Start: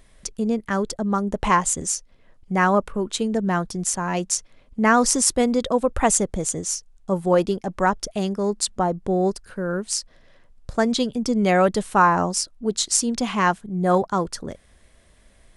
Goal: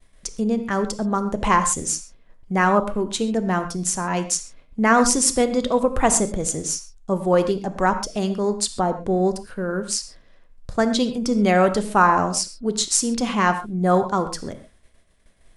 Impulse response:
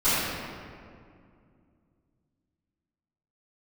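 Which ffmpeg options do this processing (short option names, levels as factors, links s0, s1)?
-filter_complex "[0:a]agate=range=0.0224:threshold=0.00447:ratio=3:detection=peak,asplit=2[s0][s1];[1:a]atrim=start_sample=2205,afade=t=out:st=0.19:d=0.01,atrim=end_sample=8820[s2];[s1][s2]afir=irnorm=-1:irlink=0,volume=0.0708[s3];[s0][s3]amix=inputs=2:normalize=0"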